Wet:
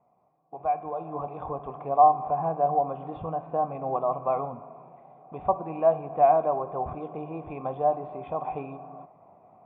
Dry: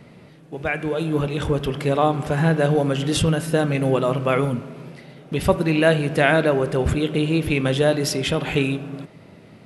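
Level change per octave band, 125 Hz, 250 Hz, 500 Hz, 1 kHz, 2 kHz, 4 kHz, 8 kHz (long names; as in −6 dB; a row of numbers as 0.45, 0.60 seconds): −19.0 dB, −17.5 dB, −6.5 dB, +3.5 dB, −26.5 dB, below −35 dB, below −40 dB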